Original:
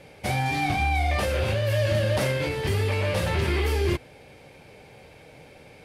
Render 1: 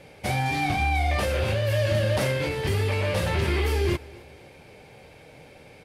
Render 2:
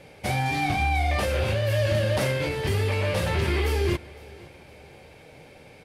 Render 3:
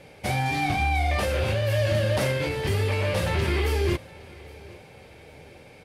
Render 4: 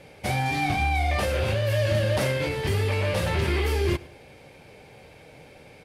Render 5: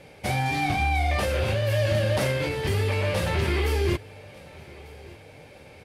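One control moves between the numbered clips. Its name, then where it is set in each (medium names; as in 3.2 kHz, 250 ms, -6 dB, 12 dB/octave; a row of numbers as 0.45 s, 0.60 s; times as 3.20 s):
feedback delay, time: 260 ms, 510 ms, 813 ms, 103 ms, 1196 ms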